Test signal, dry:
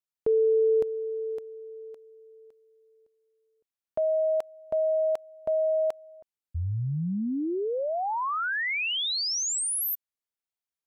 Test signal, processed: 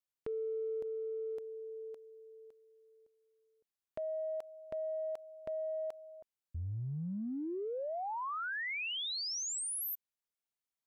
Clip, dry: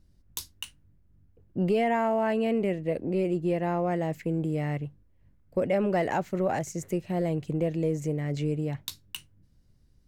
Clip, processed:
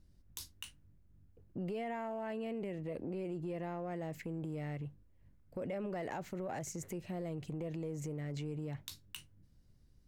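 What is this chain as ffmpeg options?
-af "acompressor=threshold=-34dB:ratio=6:attack=2.1:release=37:knee=6:detection=rms,volume=-3dB"

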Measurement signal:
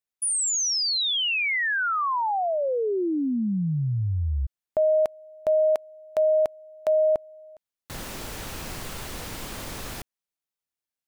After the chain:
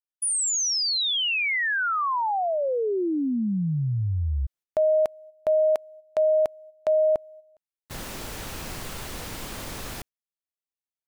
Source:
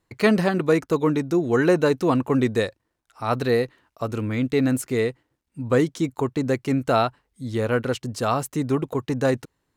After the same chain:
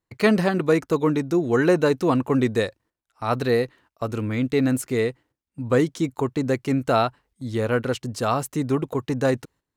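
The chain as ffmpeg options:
-af "agate=range=-11dB:threshold=-38dB:ratio=16:release=217:detection=rms"

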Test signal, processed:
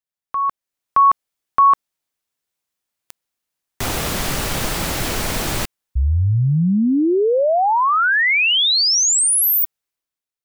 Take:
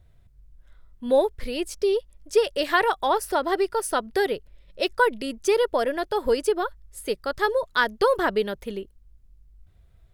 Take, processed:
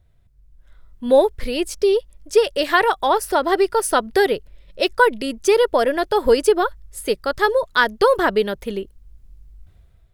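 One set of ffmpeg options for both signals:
-af "dynaudnorm=f=190:g=7:m=11.5dB,volume=-2dB"

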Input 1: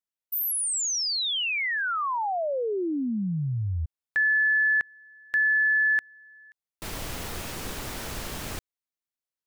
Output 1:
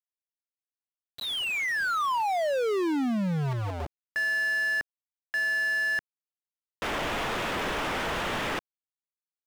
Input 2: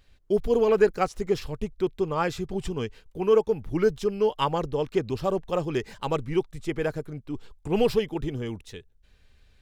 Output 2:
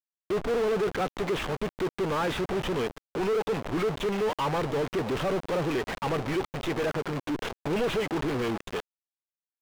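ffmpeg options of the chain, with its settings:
-filter_complex "[0:a]equalizer=f=90:w=2.9:g=-9,aresample=8000,asoftclip=type=tanh:threshold=-24dB,aresample=44100,acrusher=bits=6:mix=0:aa=0.000001,asplit=2[a][b];[b]highpass=f=720:p=1,volume=34dB,asoftclip=type=tanh:threshold=-22dB[c];[a][c]amix=inputs=2:normalize=0,lowpass=f=2k:p=1,volume=-6dB"

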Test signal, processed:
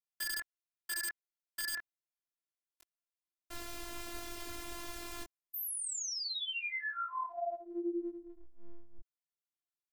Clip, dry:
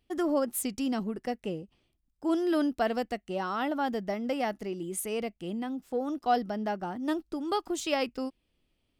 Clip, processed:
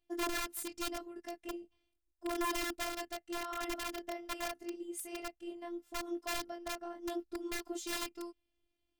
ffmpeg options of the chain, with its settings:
-af "flanger=delay=19.5:depth=3.5:speed=0.81,aeval=exprs='(mod(21.1*val(0)+1,2)-1)/21.1':c=same,afftfilt=real='hypot(re,im)*cos(PI*b)':imag='0':win_size=512:overlap=0.75,volume=-2dB"

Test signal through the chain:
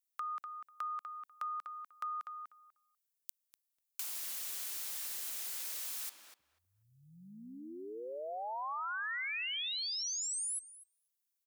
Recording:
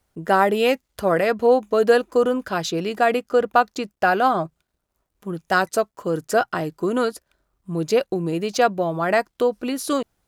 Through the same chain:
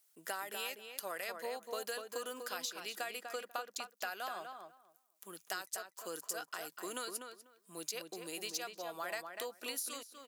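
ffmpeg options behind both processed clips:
-filter_complex "[0:a]highpass=f=180:w=0.5412,highpass=f=180:w=1.3066,aderivative,acompressor=threshold=-41dB:ratio=10,asplit=2[a][b];[b]adelay=246,lowpass=f=2.3k:p=1,volume=-5.5dB,asplit=2[c][d];[d]adelay=246,lowpass=f=2.3k:p=1,volume=0.17,asplit=2[e][f];[f]adelay=246,lowpass=f=2.3k:p=1,volume=0.17[g];[a][c][e][g]amix=inputs=4:normalize=0,volume=3.5dB"

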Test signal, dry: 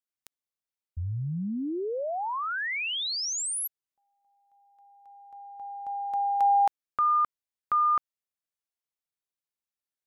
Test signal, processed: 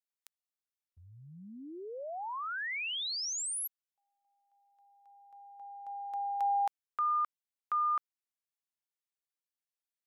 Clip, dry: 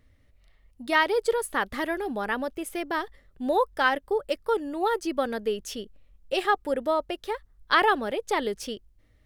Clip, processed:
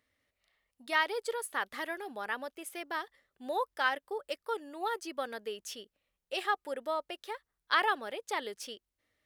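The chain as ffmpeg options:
-af "highpass=f=840:p=1,volume=-5dB"

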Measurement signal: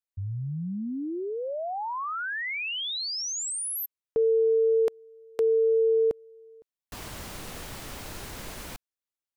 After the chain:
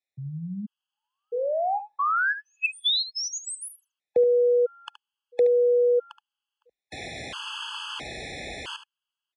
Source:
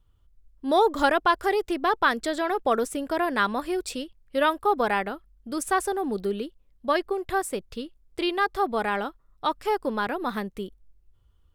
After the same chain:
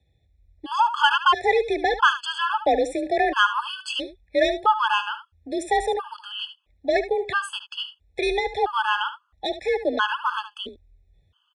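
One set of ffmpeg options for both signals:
-filter_complex "[0:a]equalizer=f=3k:t=o:w=0.5:g=12.5,asplit=2[a][b];[b]highpass=f=720:p=1,volume=13dB,asoftclip=type=tanh:threshold=-6dB[c];[a][c]amix=inputs=2:normalize=0,lowpass=f=2.2k:p=1,volume=-6dB,afreqshift=37,aecho=1:1:73:0.251,aresample=22050,aresample=44100,afftfilt=real='re*gt(sin(2*PI*0.75*pts/sr)*(1-2*mod(floor(b*sr/1024/860),2)),0)':imag='im*gt(sin(2*PI*0.75*pts/sr)*(1-2*mod(floor(b*sr/1024/860),2)),0)':win_size=1024:overlap=0.75,volume=1.5dB"

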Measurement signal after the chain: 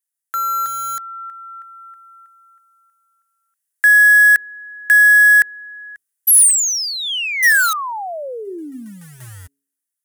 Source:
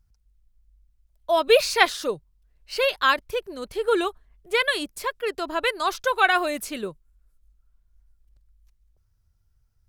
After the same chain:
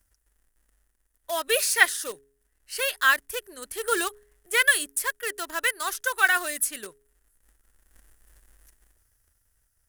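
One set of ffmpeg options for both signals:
-filter_complex "[0:a]acrossover=split=120[a][b];[a]acrusher=bits=2:mode=log:mix=0:aa=0.000001[c];[c][b]amix=inputs=2:normalize=0,equalizer=f=160:t=o:w=0.67:g=-8,equalizer=f=1.6k:t=o:w=0.67:g=11,equalizer=f=4k:t=o:w=0.67:g=-7,equalizer=f=10k:t=o:w=0.67:g=9,asplit=2[d][e];[e]acrusher=bits=3:mix=0:aa=0.000001,volume=-12dB[f];[d][f]amix=inputs=2:normalize=0,dynaudnorm=f=230:g=13:m=13.5dB,aexciter=amount=2.7:drive=7.9:freq=2.9k,equalizer=f=1.9k:t=o:w=0.23:g=9,bandreject=f=138.7:t=h:w=4,bandreject=f=277.4:t=h:w=4,bandreject=f=416.1:t=h:w=4,volume=-7.5dB"

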